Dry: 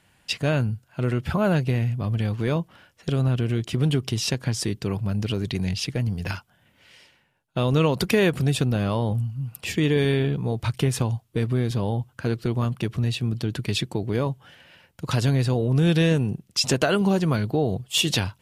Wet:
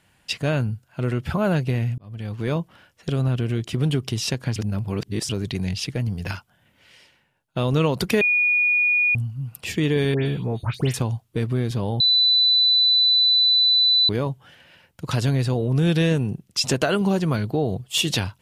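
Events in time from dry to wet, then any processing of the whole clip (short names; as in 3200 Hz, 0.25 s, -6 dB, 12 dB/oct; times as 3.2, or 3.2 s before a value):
1.98–2.52 fade in
4.56–5.29 reverse
8.21–9.15 bleep 2450 Hz -16 dBFS
10.14–10.94 dispersion highs, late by 0.127 s, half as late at 2900 Hz
12–14.09 bleep 3990 Hz -14 dBFS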